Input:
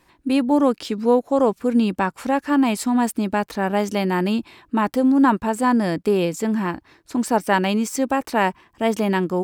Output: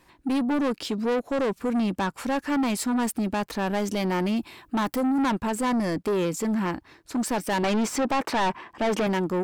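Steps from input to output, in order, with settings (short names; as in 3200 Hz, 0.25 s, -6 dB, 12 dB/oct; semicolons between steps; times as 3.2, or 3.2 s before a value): 7.63–9.07 overdrive pedal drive 21 dB, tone 1200 Hz, clips at -6 dBFS; soft clip -21 dBFS, distortion -8 dB; 4.36–5.23 high shelf 10000 Hz +11 dB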